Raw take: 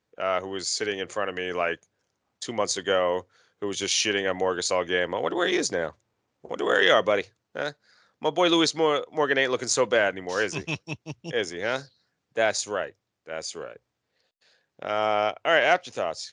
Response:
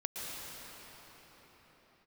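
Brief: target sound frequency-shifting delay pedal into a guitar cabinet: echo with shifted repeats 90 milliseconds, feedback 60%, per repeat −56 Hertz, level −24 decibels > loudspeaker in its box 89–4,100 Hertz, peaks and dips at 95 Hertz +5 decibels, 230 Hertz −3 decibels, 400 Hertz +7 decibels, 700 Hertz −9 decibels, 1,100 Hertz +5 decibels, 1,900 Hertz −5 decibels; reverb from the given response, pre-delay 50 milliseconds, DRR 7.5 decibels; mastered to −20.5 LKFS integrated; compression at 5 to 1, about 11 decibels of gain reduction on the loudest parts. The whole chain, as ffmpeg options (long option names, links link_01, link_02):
-filter_complex "[0:a]acompressor=threshold=-28dB:ratio=5,asplit=2[link_01][link_02];[1:a]atrim=start_sample=2205,adelay=50[link_03];[link_02][link_03]afir=irnorm=-1:irlink=0,volume=-10.5dB[link_04];[link_01][link_04]amix=inputs=2:normalize=0,asplit=5[link_05][link_06][link_07][link_08][link_09];[link_06]adelay=90,afreqshift=-56,volume=-24dB[link_10];[link_07]adelay=180,afreqshift=-112,volume=-28.4dB[link_11];[link_08]adelay=270,afreqshift=-168,volume=-32.9dB[link_12];[link_09]adelay=360,afreqshift=-224,volume=-37.3dB[link_13];[link_05][link_10][link_11][link_12][link_13]amix=inputs=5:normalize=0,highpass=89,equalizer=frequency=95:width_type=q:width=4:gain=5,equalizer=frequency=230:width_type=q:width=4:gain=-3,equalizer=frequency=400:width_type=q:width=4:gain=7,equalizer=frequency=700:width_type=q:width=4:gain=-9,equalizer=frequency=1100:width_type=q:width=4:gain=5,equalizer=frequency=1900:width_type=q:width=4:gain=-5,lowpass=frequency=4100:width=0.5412,lowpass=frequency=4100:width=1.3066,volume=12dB"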